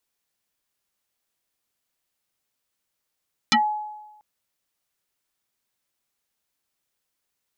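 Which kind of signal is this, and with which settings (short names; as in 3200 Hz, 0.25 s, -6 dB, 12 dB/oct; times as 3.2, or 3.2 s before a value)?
FM tone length 0.69 s, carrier 847 Hz, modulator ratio 1.27, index 6, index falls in 0.13 s exponential, decay 1.08 s, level -13 dB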